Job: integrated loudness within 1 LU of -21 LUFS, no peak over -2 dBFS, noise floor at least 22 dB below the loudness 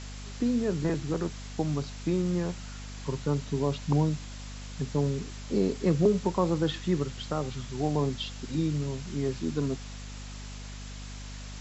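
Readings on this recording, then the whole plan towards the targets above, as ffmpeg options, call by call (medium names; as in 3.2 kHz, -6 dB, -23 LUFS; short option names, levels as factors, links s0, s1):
hum 50 Hz; highest harmonic 250 Hz; hum level -39 dBFS; noise floor -41 dBFS; noise floor target -52 dBFS; loudness -30.0 LUFS; peak level -12.0 dBFS; loudness target -21.0 LUFS
-> -af "bandreject=f=50:t=h:w=6,bandreject=f=100:t=h:w=6,bandreject=f=150:t=h:w=6,bandreject=f=200:t=h:w=6,bandreject=f=250:t=h:w=6"
-af "afftdn=nr=11:nf=-41"
-af "volume=2.82"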